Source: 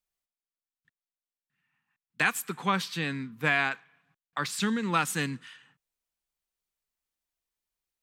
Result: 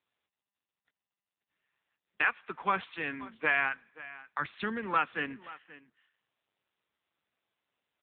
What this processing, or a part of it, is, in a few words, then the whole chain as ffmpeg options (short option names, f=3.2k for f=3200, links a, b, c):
satellite phone: -filter_complex "[0:a]asplit=3[a][b][c];[a]afade=t=out:st=3.51:d=0.02[d];[b]asubboost=boost=9:cutoff=140,afade=t=in:st=3.51:d=0.02,afade=t=out:st=4.48:d=0.02[e];[c]afade=t=in:st=4.48:d=0.02[f];[d][e][f]amix=inputs=3:normalize=0,highpass=350,lowpass=3k,aecho=1:1:529:0.126" -ar 8000 -c:a libopencore_amrnb -b:a 6700